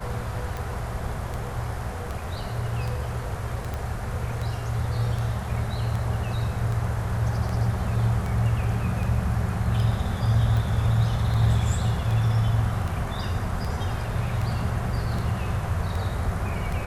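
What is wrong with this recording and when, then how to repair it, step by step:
tick 78 rpm
3.74 pop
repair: de-click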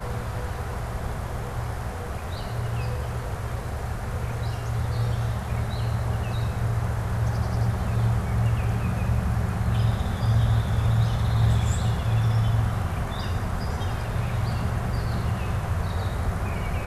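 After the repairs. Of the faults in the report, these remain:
3.74 pop

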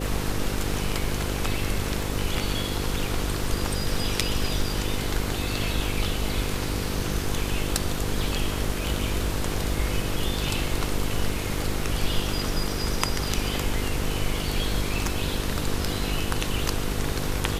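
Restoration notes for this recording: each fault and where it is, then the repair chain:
buzz 50 Hz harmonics 10 -31 dBFS
crackle 26/s -34 dBFS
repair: de-click; de-hum 50 Hz, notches 10

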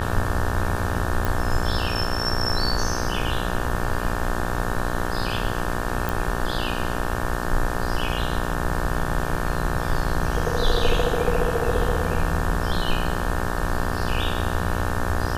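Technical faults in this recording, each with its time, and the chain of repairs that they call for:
buzz 60 Hz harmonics 30 -28 dBFS
1.25 pop
6.09 pop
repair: de-click; de-hum 60 Hz, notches 30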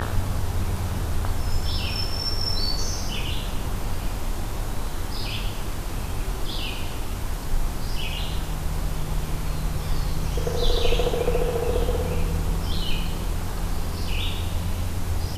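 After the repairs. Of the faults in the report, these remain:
none

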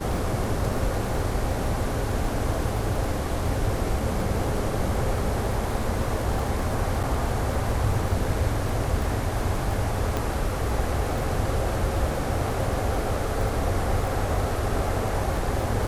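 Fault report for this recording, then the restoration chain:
crackle 21/s -29 dBFS
7.03–7.04 gap 6.1 ms
10.17 pop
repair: de-click; interpolate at 7.03, 6.1 ms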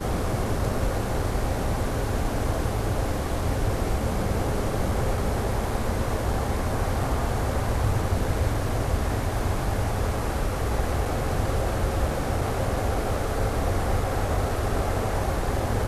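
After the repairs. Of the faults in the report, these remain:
none

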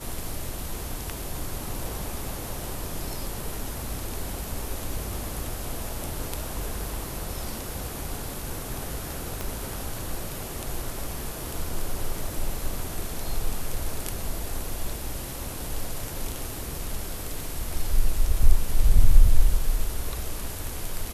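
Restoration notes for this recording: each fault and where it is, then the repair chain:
9.41 pop -15 dBFS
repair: de-click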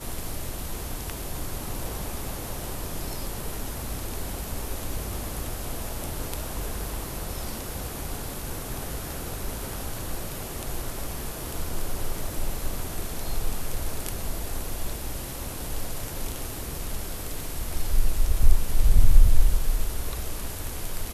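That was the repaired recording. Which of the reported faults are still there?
9.41 pop

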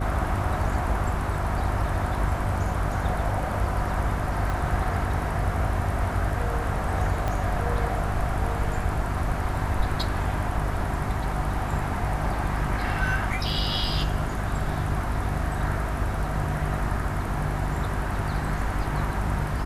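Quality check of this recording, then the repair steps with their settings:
hum 50 Hz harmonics 8 -30 dBFS
4.5 pop
7.28 pop -15 dBFS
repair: de-click; de-hum 50 Hz, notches 8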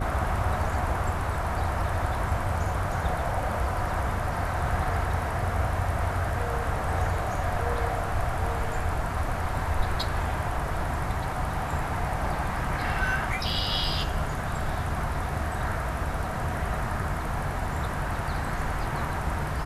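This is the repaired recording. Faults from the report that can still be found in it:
4.5 pop
7.28 pop

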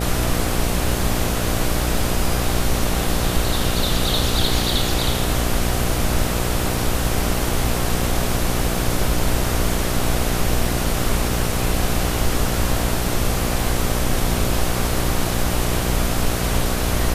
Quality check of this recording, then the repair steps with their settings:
buzz 60 Hz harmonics 13 -24 dBFS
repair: de-hum 60 Hz, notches 13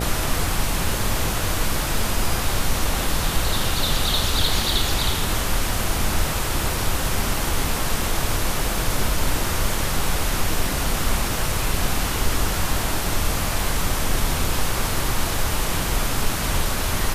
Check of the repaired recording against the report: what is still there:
none

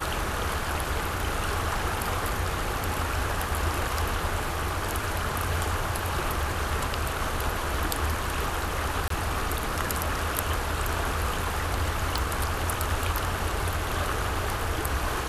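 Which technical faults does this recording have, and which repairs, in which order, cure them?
9.08–9.1 gap 23 ms
12.18 pop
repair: de-click; interpolate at 9.08, 23 ms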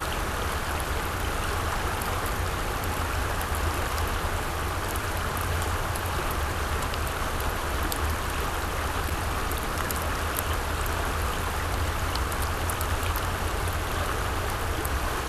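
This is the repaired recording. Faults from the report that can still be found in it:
none

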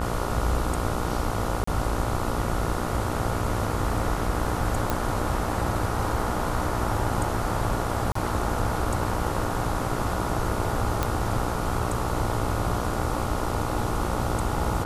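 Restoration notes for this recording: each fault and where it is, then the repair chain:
buzz 60 Hz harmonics 24 -31 dBFS
1.64–1.67 gap 34 ms
4.9 pop
8.12–8.15 gap 34 ms
11.03 pop -9 dBFS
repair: de-click; de-hum 60 Hz, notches 24; interpolate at 1.64, 34 ms; interpolate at 8.12, 34 ms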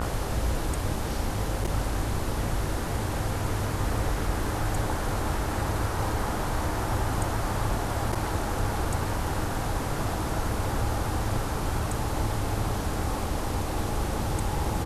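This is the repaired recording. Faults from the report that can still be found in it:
none

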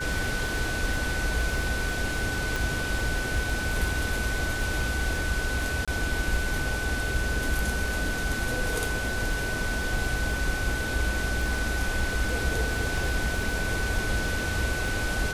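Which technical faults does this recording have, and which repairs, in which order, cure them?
crackle 27/s -31 dBFS
tone 1500 Hz -31 dBFS
2.56 pop
5.85–5.88 gap 26 ms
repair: de-click; notch 1500 Hz, Q 30; interpolate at 5.85, 26 ms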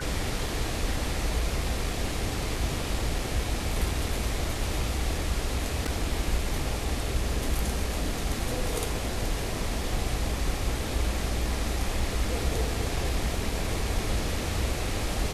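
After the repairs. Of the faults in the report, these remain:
none

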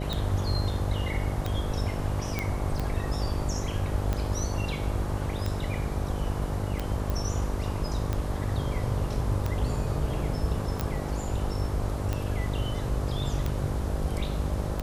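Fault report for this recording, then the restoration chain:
buzz 50 Hz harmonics 12 -33 dBFS
tick 45 rpm -16 dBFS
2.39 pop -14 dBFS
7.1 pop
10.81 pop -15 dBFS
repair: de-click; de-hum 50 Hz, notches 12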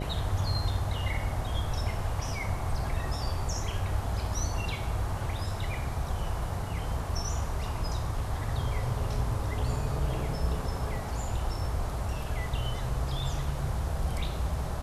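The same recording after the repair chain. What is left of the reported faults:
7.1 pop

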